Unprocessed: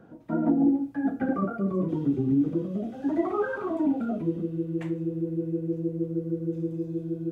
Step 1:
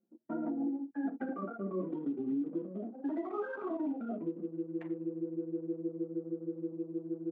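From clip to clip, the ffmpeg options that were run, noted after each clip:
-af "anlmdn=2.51,highpass=f=220:w=0.5412,highpass=f=220:w=1.3066,alimiter=limit=-22dB:level=0:latency=1:release=331,volume=-5.5dB"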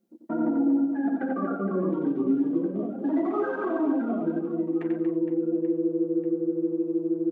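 -af "aecho=1:1:90|234|464.4|833|1423:0.631|0.398|0.251|0.158|0.1,volume=8dB"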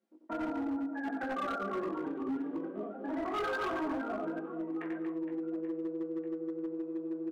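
-filter_complex "[0:a]bandpass=f=1.5k:t=q:w=0.8:csg=0,asplit=2[a][b];[b]adelay=19,volume=-3.5dB[c];[a][c]amix=inputs=2:normalize=0,asoftclip=type=hard:threshold=-30.5dB"

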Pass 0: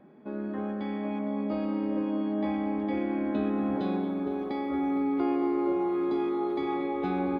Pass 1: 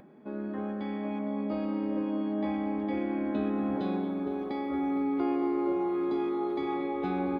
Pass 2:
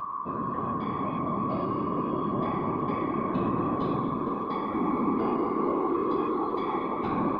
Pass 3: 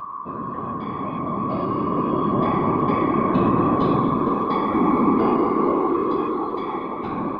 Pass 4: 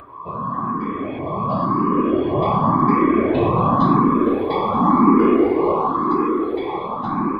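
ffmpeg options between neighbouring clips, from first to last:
-af "acompressor=mode=upward:threshold=-49dB:ratio=2.5,volume=-1.5dB"
-af "aeval=exprs='val(0)+0.0251*sin(2*PI*1100*n/s)':c=same,afftfilt=real='hypot(re,im)*cos(2*PI*random(0))':imag='hypot(re,im)*sin(2*PI*random(1))':win_size=512:overlap=0.75,volume=7dB"
-af "dynaudnorm=f=210:g=17:m=7.5dB,volume=1.5dB"
-filter_complex "[0:a]asplit=2[a][b];[b]afreqshift=0.92[c];[a][c]amix=inputs=2:normalize=1,volume=6dB"

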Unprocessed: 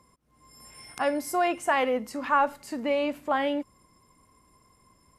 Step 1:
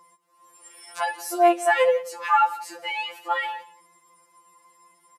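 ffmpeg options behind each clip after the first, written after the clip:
-af "highpass=490,aecho=1:1:179:0.112,afftfilt=real='re*2.83*eq(mod(b,8),0)':imag='im*2.83*eq(mod(b,8),0)':win_size=2048:overlap=0.75,volume=7dB"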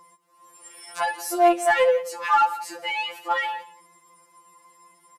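-filter_complex "[0:a]lowshelf=f=160:g=5.5,asplit=2[a][b];[b]asoftclip=type=tanh:threshold=-24.5dB,volume=-5dB[c];[a][c]amix=inputs=2:normalize=0,volume=-1.5dB"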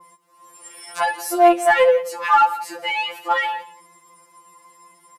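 -af "adynamicequalizer=threshold=0.00501:dfrequency=6500:dqfactor=0.89:tfrequency=6500:tqfactor=0.89:attack=5:release=100:ratio=0.375:range=2.5:mode=cutabove:tftype=bell,volume=4.5dB"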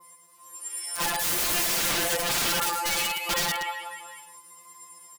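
-af "crystalizer=i=3.5:c=0,aecho=1:1:110|236.5|382|549.3|741.7:0.631|0.398|0.251|0.158|0.1,aeval=exprs='(mod(4.47*val(0)+1,2)-1)/4.47':c=same,volume=-8dB"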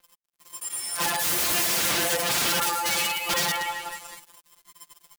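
-filter_complex "[0:a]highpass=57,asplit=2[a][b];[b]acompressor=mode=upward:threshold=-30dB:ratio=2.5,volume=-2dB[c];[a][c]amix=inputs=2:normalize=0,acrusher=bits=4:mix=0:aa=0.5,volume=-3.5dB"

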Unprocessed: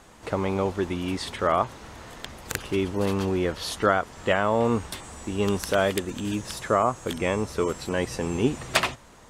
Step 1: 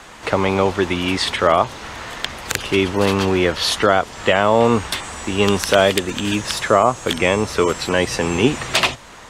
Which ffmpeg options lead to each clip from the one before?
-filter_complex "[0:a]equalizer=f=2.3k:w=0.35:g=9.5,acrossover=split=120|940|2500[a][b][c][d];[c]acompressor=threshold=-31dB:ratio=6[e];[a][b][e][d]amix=inputs=4:normalize=0,alimiter=level_in=7dB:limit=-1dB:release=50:level=0:latency=1,volume=-1dB"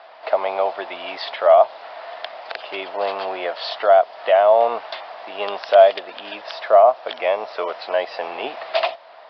-af "highpass=f=660:t=q:w=7.8,aresample=11025,aresample=44100,volume=-9.5dB"

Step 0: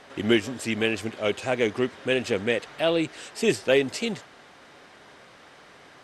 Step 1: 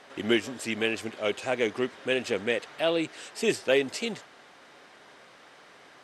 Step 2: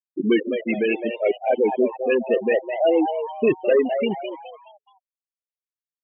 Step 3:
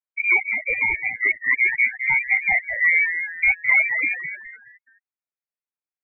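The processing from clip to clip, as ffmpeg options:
-af "lowshelf=f=130:g=-12,volume=-2dB"
-filter_complex "[0:a]aeval=exprs='0.316*(cos(1*acos(clip(val(0)/0.316,-1,1)))-cos(1*PI/2))+0.158*(cos(5*acos(clip(val(0)/0.316,-1,1)))-cos(5*PI/2))':c=same,afftfilt=real='re*gte(hypot(re,im),0.316)':imag='im*gte(hypot(re,im),0.316)':win_size=1024:overlap=0.75,asplit=5[a][b][c][d][e];[b]adelay=211,afreqshift=140,volume=-8dB[f];[c]adelay=422,afreqshift=280,volume=-16.9dB[g];[d]adelay=633,afreqshift=420,volume=-25.7dB[h];[e]adelay=844,afreqshift=560,volume=-34.6dB[i];[a][f][g][h][i]amix=inputs=5:normalize=0"
-af "lowpass=f=2.2k:t=q:w=0.5098,lowpass=f=2.2k:t=q:w=0.6013,lowpass=f=2.2k:t=q:w=0.9,lowpass=f=2.2k:t=q:w=2.563,afreqshift=-2600"

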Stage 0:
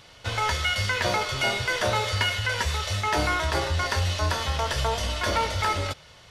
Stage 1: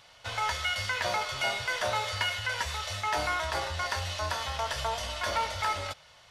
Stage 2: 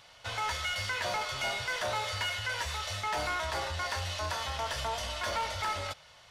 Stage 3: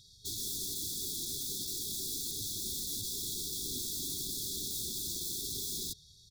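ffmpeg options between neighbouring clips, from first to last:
-af "lowshelf=f=510:t=q:w=1.5:g=-6.5,volume=-5dB"
-af "asoftclip=type=tanh:threshold=-27dB"
-af "aecho=1:1:1.6:0.75,aeval=exprs='(mod(37.6*val(0)+1,2)-1)/37.6':c=same,afftfilt=real='re*(1-between(b*sr/4096,420,3300))':imag='im*(1-between(b*sr/4096,420,3300))':win_size=4096:overlap=0.75"

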